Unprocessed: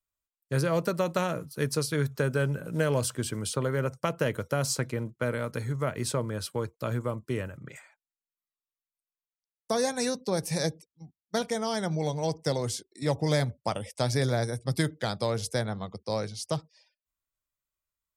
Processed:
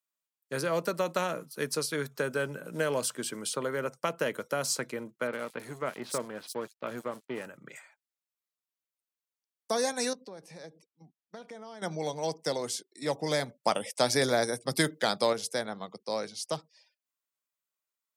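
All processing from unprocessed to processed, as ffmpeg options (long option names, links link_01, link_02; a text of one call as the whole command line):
ffmpeg -i in.wav -filter_complex "[0:a]asettb=1/sr,asplit=3[link_01][link_02][link_03];[link_01]atrim=end=5.274[link_04];[link_02]atrim=start=5.27:end=7.46,asetpts=PTS-STARTPTS,afade=type=in:duration=0.004:curve=qsin,afade=type=out:start_time=2.186:duration=0.004:curve=qsin,aeval=exprs='sgn(val(0))*max(abs(val(0))-0.00841,0)':channel_layout=same,acrossover=split=3900[link_05][link_06];[link_06]adelay=60[link_07];[link_05][link_07]amix=inputs=2:normalize=0,atrim=end_sample=96579[link_08];[link_03]atrim=start=7.456[link_09];[link_04][link_08]acrossfade=duration=0.004:curve1=hsin:curve2=qsin[link_10];[link_10][link_09]acrossfade=duration=0.004:curve1=qsin:curve2=hsin,asettb=1/sr,asplit=3[link_11][link_12][link_13];[link_11]atrim=end=10.134[link_14];[link_12]atrim=start=10.13:end=11.82,asetpts=PTS-STARTPTS,afade=type=in:duration=0.004:curve=qsin,afade=type=out:start_time=1.686:duration=0.004:curve=qsin,acompressor=threshold=-41dB:ratio=4:attack=3.2:release=140:knee=1:detection=peak,aemphasis=mode=reproduction:type=75fm[link_15];[link_13]atrim=start=11.816[link_16];[link_14][link_15]acrossfade=duration=0.004:curve1=hsin:curve2=qsin[link_17];[link_17][link_16]acrossfade=duration=0.004:curve1=qsin:curve2=hsin,asettb=1/sr,asplit=3[link_18][link_19][link_20];[link_18]atrim=end=13.634[link_21];[link_19]atrim=start=13.63:end=15.33,asetpts=PTS-STARTPTS,afade=type=in:duration=0.004:curve=qsin,afade=type=out:start_time=1.696:duration=0.004:curve=qsin,highshelf=frequency=9900:gain=3,acontrast=23[link_22];[link_20]atrim=start=15.326[link_23];[link_21][link_22]acrossfade=duration=0.004:curve1=hsin:curve2=qsin[link_24];[link_24][link_23]acrossfade=duration=0.004:curve1=qsin:curve2=hsin,highpass=frequency=170:width=0.5412,highpass=frequency=170:width=1.3066,lowshelf=frequency=320:gain=-7" out.wav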